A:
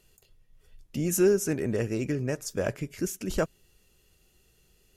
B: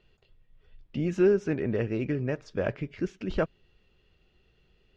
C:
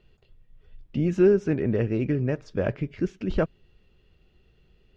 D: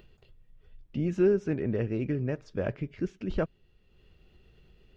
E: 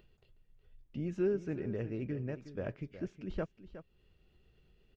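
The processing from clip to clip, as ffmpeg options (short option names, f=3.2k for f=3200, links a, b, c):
-af "lowpass=f=3.7k:w=0.5412,lowpass=f=3.7k:w=1.3066"
-af "lowshelf=f=430:g=6"
-af "acompressor=mode=upward:threshold=-44dB:ratio=2.5,volume=-5dB"
-af "aecho=1:1:365:0.224,volume=-8dB"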